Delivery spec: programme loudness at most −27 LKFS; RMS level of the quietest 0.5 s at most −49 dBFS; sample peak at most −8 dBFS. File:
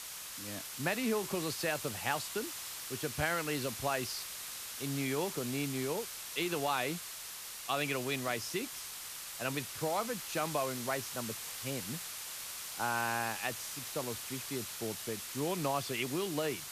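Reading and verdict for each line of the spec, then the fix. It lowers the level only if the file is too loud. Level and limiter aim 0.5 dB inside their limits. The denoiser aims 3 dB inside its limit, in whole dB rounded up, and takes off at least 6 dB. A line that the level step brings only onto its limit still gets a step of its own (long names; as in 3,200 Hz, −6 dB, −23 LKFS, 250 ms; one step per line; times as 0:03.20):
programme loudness −36.0 LKFS: in spec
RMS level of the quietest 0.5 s −45 dBFS: out of spec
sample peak −17.5 dBFS: in spec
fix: broadband denoise 7 dB, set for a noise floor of −45 dBFS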